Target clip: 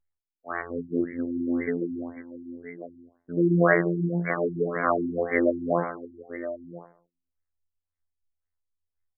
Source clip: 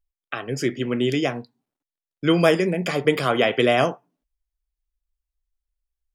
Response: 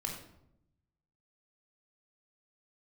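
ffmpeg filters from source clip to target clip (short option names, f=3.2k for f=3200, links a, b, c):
-filter_complex "[0:a]crystalizer=i=7.5:c=0,asplit=2[a][b];[b]adelay=85,lowpass=f=2.3k:p=1,volume=-18.5dB,asplit=2[c][d];[d]adelay=85,lowpass=f=2.3k:p=1,volume=0.27[e];[c][e]amix=inputs=2:normalize=0[f];[a][f]amix=inputs=2:normalize=0,afftfilt=real='hypot(re,im)*cos(PI*b)':imag='0':win_size=2048:overlap=0.75,asplit=2[g][h];[h]aecho=0:1:654:0.211[i];[g][i]amix=inputs=2:normalize=0,atempo=0.67,afftfilt=real='re*lt(b*sr/1024,340*pow(2300/340,0.5+0.5*sin(2*PI*1.9*pts/sr)))':imag='im*lt(b*sr/1024,340*pow(2300/340,0.5+0.5*sin(2*PI*1.9*pts/sr)))':win_size=1024:overlap=0.75"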